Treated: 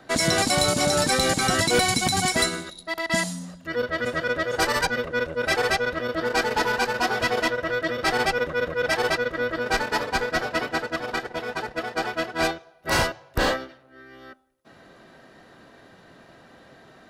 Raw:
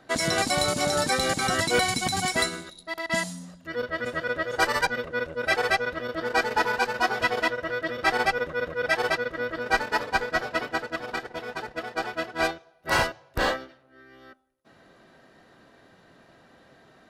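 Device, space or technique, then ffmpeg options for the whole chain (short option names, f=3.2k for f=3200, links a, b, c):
one-band saturation: -filter_complex "[0:a]acrossover=split=420|4000[a][b][c];[b]asoftclip=type=tanh:threshold=-25dB[d];[a][d][c]amix=inputs=3:normalize=0,volume=5dB"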